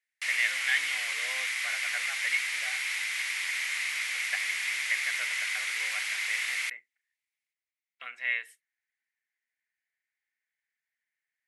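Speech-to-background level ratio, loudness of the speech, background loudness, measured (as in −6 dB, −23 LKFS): −4.5 dB, −34.0 LKFS, −29.5 LKFS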